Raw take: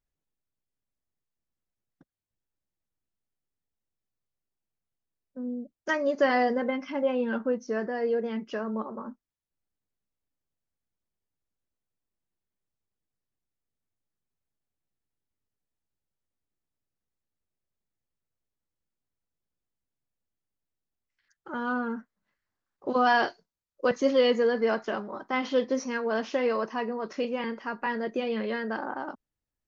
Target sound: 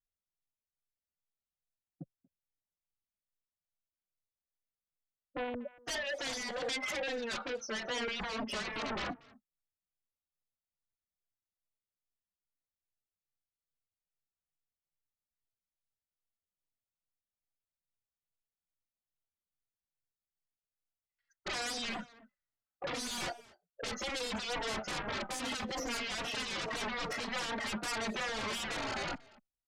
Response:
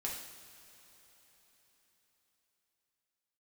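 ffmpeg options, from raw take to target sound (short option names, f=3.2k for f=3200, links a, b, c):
-filter_complex "[0:a]aecho=1:1:1.5:0.41,acompressor=threshold=-36dB:ratio=2.5,asoftclip=type=tanh:threshold=-30.5dB,asettb=1/sr,asplit=3[a][b][c];[a]atrim=end=5.544[d];[b]atrim=start=5.54:end=8.08,asetpts=PTS-STARTPTS,afade=t=in:d=0.004:c=qsin,afade=t=out:st=2.536:d=0.004:c=qsin,highpass=720[e];[c]atrim=start=8.076[f];[d][e]acrossfade=d=0.004:c1=hsin:c2=qsin[g];[g][f]acrossfade=d=0.004:c1=qsin:c2=hsin,afftdn=nr=29:nf=-54,alimiter=level_in=9.5dB:limit=-24dB:level=0:latency=1:release=49,volume=-9.5dB,acrossover=split=2700[h][i];[i]acompressor=threshold=-56dB:ratio=4:attack=1:release=60[j];[h][j]amix=inputs=2:normalize=0,aeval=exprs='0.0398*sin(PI/2*7.94*val(0)/0.0398)':c=same,aecho=1:1:237:0.0668,asplit=2[k][l];[l]adelay=3.7,afreqshift=-2.4[m];[k][m]amix=inputs=2:normalize=1,volume=-3dB"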